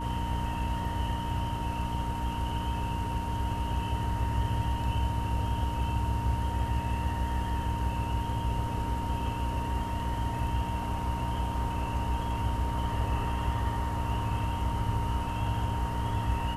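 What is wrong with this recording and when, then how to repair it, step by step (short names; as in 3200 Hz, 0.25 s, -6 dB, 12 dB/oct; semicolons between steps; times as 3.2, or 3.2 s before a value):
hum 60 Hz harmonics 5 -35 dBFS
tone 930 Hz -35 dBFS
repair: de-hum 60 Hz, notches 5; notch 930 Hz, Q 30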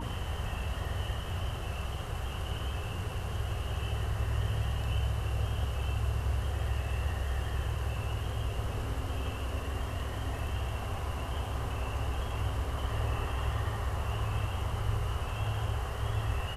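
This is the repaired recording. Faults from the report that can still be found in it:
none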